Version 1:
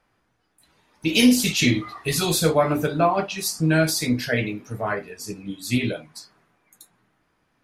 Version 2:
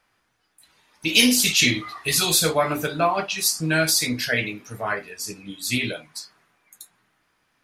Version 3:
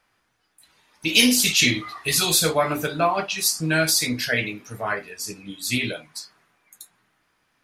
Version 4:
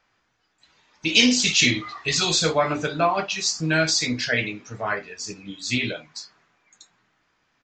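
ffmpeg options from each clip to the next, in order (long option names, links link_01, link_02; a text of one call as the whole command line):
ffmpeg -i in.wav -af "tiltshelf=frequency=970:gain=-5.5" out.wav
ffmpeg -i in.wav -af anull out.wav
ffmpeg -i in.wav -af "aresample=16000,aresample=44100" out.wav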